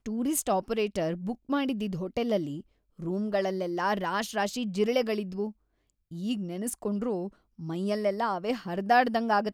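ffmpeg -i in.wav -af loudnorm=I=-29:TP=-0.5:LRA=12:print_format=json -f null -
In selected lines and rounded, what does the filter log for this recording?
"input_i" : "-29.3",
"input_tp" : "-10.8",
"input_lra" : "2.7",
"input_thresh" : "-39.6",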